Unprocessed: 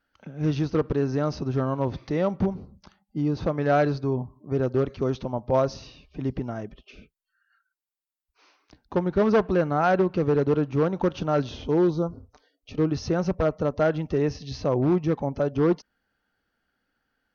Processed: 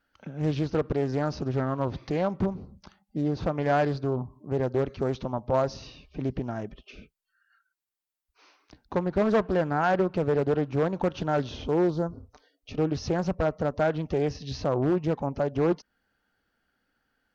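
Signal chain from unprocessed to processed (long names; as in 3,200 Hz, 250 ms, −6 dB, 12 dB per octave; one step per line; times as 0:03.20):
in parallel at −2 dB: downward compressor, threshold −31 dBFS, peak gain reduction 14 dB
on the sum: highs frequency-modulated by the lows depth 0.48 ms
level −4 dB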